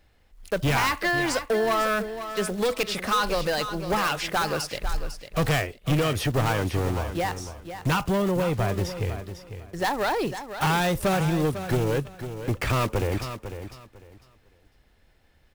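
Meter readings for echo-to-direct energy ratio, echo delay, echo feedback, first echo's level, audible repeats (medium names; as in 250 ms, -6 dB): -10.5 dB, 500 ms, 22%, -10.5 dB, 2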